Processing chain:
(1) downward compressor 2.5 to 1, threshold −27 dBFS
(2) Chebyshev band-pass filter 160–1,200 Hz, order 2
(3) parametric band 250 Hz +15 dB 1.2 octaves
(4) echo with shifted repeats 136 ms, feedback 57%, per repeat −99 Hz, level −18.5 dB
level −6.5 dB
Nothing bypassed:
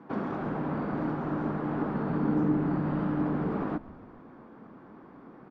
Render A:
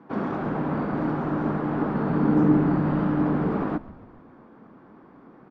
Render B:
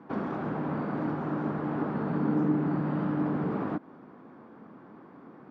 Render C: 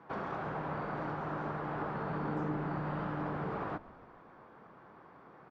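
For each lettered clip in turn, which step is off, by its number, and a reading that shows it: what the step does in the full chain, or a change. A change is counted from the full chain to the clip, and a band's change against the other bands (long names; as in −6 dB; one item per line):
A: 1, average gain reduction 3.5 dB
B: 4, echo-to-direct ratio −17.0 dB to none audible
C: 3, 250 Hz band −8.5 dB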